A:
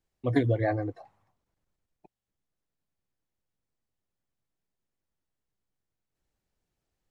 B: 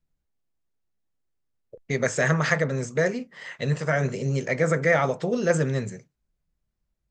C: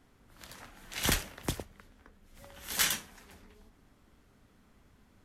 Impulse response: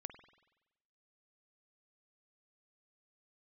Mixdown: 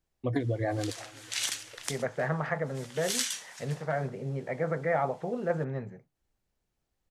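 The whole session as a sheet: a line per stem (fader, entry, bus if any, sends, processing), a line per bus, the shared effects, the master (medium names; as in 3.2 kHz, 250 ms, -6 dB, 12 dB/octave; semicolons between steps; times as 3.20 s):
+0.5 dB, 0.00 s, no send, echo send -23 dB, compression 4:1, threshold -27 dBFS, peak gain reduction 7.5 dB
-9.0 dB, 0.00 s, no send, no echo send, low-pass 1.8 kHz 12 dB/octave; peaking EQ 790 Hz +9.5 dB 0.52 oct
0.0 dB, 0.40 s, no send, no echo send, compression 12:1, threshold -37 dBFS, peak gain reduction 15 dB; frequency weighting ITU-R 468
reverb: none
echo: feedback delay 393 ms, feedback 47%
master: none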